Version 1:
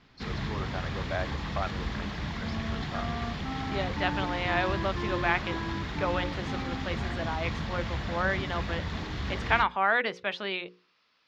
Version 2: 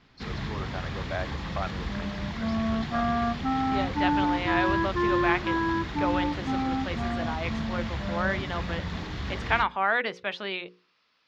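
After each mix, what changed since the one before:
second sound +10.5 dB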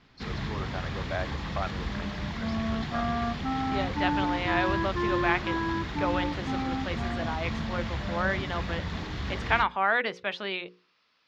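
second sound -3.5 dB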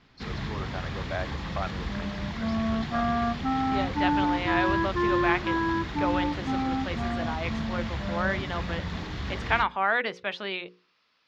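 second sound +3.5 dB

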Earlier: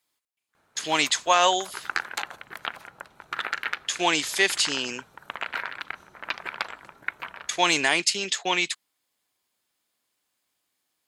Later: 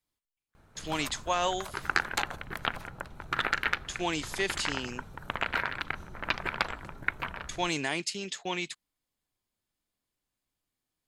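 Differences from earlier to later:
speech -11.0 dB; master: remove high-pass 640 Hz 6 dB/octave

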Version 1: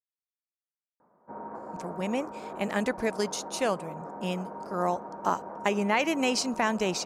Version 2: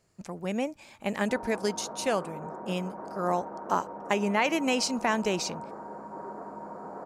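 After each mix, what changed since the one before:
speech: entry -1.55 s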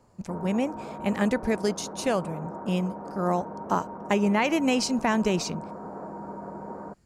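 background: entry -1.00 s; master: add bass shelf 230 Hz +11.5 dB

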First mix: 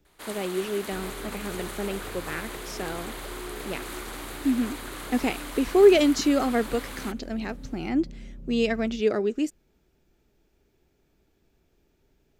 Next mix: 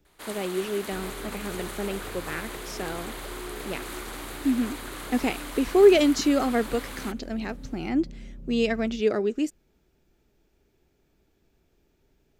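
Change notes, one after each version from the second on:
no change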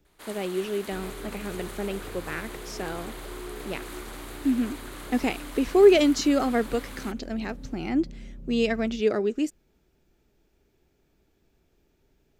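first sound -4.0 dB

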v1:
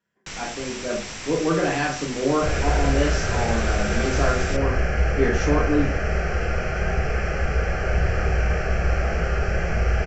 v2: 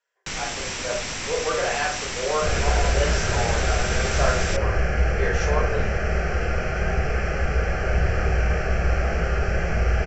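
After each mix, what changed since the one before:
speech: add steep high-pass 440 Hz 48 dB/octave; first sound +4.5 dB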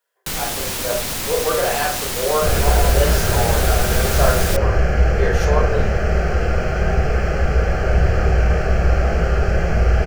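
master: remove rippled Chebyshev low-pass 7.7 kHz, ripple 6 dB

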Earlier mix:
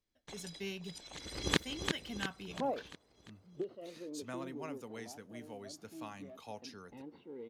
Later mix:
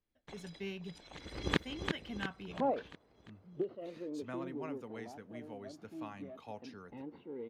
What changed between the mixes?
second sound +3.0 dB; master: add tone controls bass +1 dB, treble -13 dB

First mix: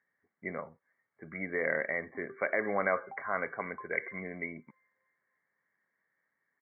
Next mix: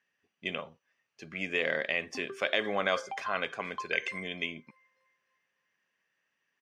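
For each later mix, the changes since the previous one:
background +7.5 dB; master: remove brick-wall FIR low-pass 2.3 kHz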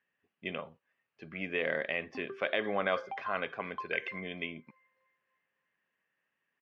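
master: add distance through air 320 m

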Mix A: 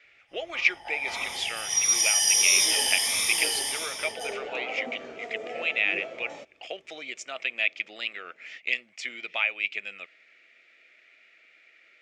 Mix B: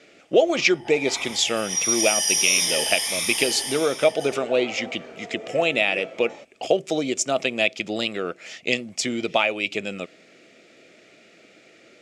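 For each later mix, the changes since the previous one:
speech: remove band-pass filter 2.1 kHz, Q 2.3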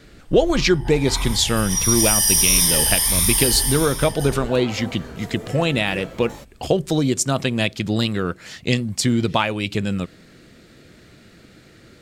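second sound: remove distance through air 94 m; master: remove cabinet simulation 390–9200 Hz, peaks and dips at 640 Hz +5 dB, 1 kHz -10 dB, 1.6 kHz -7 dB, 2.4 kHz +6 dB, 4.2 kHz -7 dB, 8.8 kHz -9 dB

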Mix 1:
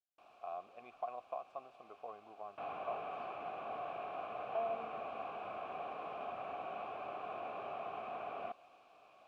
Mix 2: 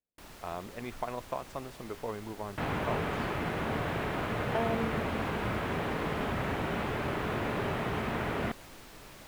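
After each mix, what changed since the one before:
master: remove vowel filter a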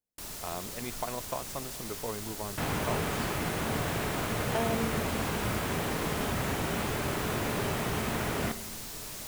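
first sound: send on; master: add tone controls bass +2 dB, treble +13 dB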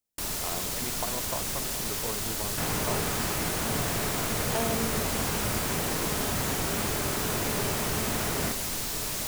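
first sound +9.0 dB

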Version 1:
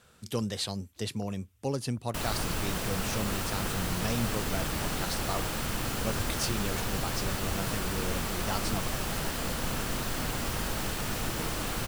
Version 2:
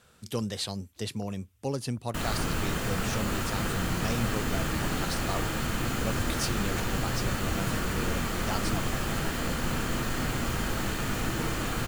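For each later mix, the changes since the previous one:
background: send +11.0 dB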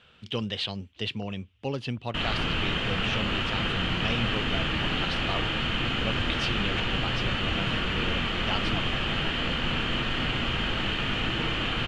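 master: add resonant low-pass 3 kHz, resonance Q 4.5

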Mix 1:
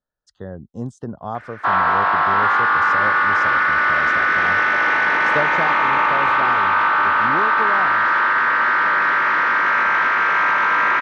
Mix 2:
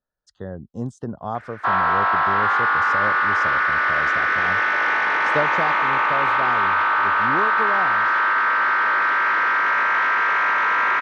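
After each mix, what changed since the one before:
background: add peaking EQ 130 Hz -7 dB 1.9 oct; reverb: off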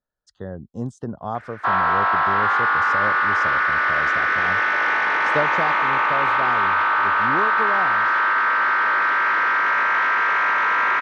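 no change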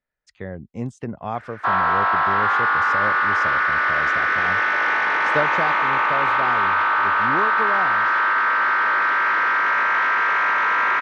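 speech: remove Butterworth band-stop 2.3 kHz, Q 1.3

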